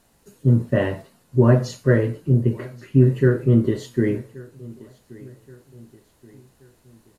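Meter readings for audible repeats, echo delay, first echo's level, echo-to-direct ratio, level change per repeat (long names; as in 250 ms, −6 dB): 2, 1,127 ms, −22.0 dB, −21.0 dB, −7.0 dB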